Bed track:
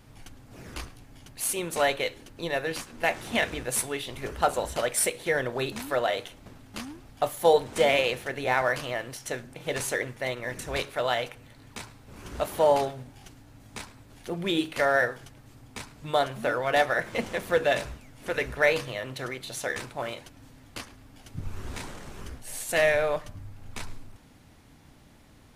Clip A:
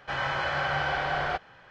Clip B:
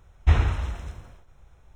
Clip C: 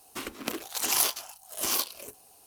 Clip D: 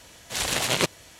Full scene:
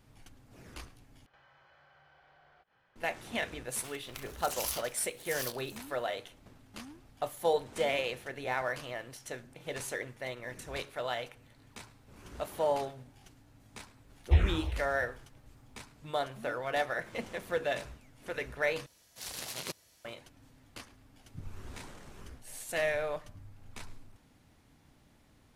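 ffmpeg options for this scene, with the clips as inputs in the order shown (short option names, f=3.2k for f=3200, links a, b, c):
-filter_complex "[0:a]volume=-8.5dB[a];[1:a]acompressor=threshold=-44dB:ratio=6:attack=3.2:release=140:knee=1:detection=peak[b];[3:a]highpass=1.1k[c];[2:a]asplit=2[d][e];[e]afreqshift=-2.8[f];[d][f]amix=inputs=2:normalize=1[g];[4:a]aexciter=amount=1.7:drive=6.2:freq=4.3k[h];[a]asplit=3[i][j][k];[i]atrim=end=1.264[l];[b]atrim=end=1.7,asetpts=PTS-STARTPTS,volume=-17.5dB[m];[j]atrim=start=2.956:end=18.864[n];[h]atrim=end=1.19,asetpts=PTS-STARTPTS,volume=-18dB[o];[k]atrim=start=20.046[p];[c]atrim=end=2.46,asetpts=PTS-STARTPTS,volume=-11dB,afade=t=in:d=0.004:c=hsin,afade=t=out:st=2.456:d=0.004:c=hsin,adelay=3680[q];[g]atrim=end=1.75,asetpts=PTS-STARTPTS,volume=-4.5dB,afade=t=in:d=0.004:c=hsin,afade=t=out:st=1.746:d=0.004:c=hsin,adelay=14040[r];[l][m]acrossfade=d=0.004:c1=hsin:c2=hsin[s];[s][n]acrossfade=d=0.004:c1=hsin:c2=hsin[t];[t][o]acrossfade=d=0.004:c1=hsin:c2=hsin[u];[u][p]acrossfade=d=0.004:c1=hsin:c2=hsin[v];[v][q][r]amix=inputs=3:normalize=0"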